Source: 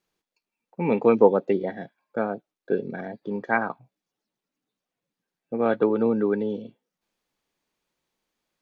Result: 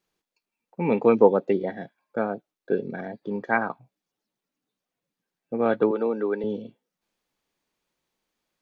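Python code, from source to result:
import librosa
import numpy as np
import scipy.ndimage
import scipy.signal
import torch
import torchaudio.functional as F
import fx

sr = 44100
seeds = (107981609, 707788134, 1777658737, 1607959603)

y = fx.highpass(x, sr, hz=350.0, slope=12, at=(5.91, 6.44))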